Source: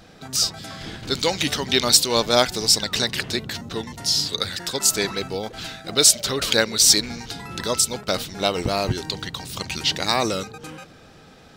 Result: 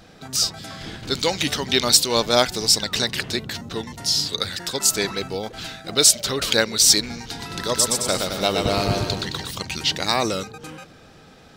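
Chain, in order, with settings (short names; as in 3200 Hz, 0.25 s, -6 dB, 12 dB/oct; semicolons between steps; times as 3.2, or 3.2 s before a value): 7.19–9.51 bouncing-ball echo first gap 0.12 s, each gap 0.8×, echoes 5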